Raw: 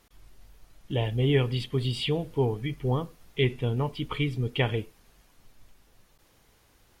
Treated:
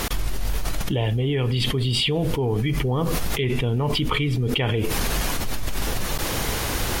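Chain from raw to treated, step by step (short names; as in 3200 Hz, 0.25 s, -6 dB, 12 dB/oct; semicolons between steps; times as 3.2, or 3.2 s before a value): fast leveller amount 100%; gain -3 dB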